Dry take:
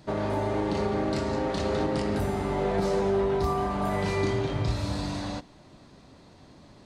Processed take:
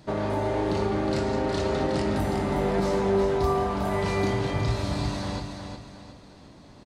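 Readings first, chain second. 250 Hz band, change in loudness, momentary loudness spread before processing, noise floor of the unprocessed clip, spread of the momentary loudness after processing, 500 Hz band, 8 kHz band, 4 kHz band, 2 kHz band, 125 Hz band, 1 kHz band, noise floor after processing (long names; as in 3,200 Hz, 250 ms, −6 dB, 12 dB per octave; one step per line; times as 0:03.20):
+1.5 dB, +1.5 dB, 5 LU, −53 dBFS, 9 LU, +1.5 dB, +2.0 dB, +2.0 dB, +2.0 dB, +2.0 dB, +1.5 dB, −49 dBFS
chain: repeating echo 364 ms, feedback 38%, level −6.5 dB
level +1 dB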